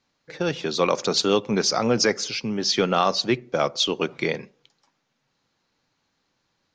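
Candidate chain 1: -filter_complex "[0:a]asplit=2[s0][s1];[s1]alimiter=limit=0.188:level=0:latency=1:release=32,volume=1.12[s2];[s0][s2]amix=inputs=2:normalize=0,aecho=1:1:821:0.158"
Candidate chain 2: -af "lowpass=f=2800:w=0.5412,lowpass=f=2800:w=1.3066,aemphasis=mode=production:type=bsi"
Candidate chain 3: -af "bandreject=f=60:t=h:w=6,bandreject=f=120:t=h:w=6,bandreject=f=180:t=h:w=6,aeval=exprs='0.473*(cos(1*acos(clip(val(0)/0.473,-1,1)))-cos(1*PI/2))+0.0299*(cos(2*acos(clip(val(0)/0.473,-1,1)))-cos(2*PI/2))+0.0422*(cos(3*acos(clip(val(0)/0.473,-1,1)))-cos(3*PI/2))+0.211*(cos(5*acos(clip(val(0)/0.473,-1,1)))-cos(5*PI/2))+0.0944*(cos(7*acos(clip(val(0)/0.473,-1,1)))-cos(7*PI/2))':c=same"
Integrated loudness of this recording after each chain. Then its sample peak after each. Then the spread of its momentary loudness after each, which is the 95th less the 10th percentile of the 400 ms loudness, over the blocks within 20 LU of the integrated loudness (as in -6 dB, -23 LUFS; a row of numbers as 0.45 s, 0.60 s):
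-18.0 LUFS, -26.0 LUFS, -19.5 LUFS; -3.5 dBFS, -7.0 dBFS, -7.0 dBFS; 13 LU, 8 LU, 6 LU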